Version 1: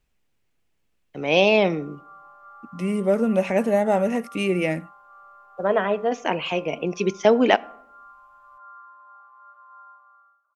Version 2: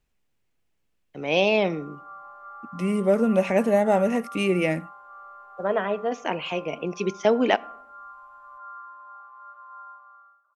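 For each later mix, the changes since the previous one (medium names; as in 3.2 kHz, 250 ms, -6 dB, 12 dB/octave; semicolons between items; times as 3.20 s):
first voice -3.5 dB; background +4.0 dB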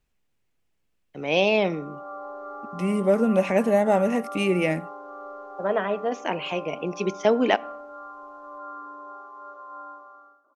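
background: remove Butterworth band-pass 1.8 kHz, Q 0.98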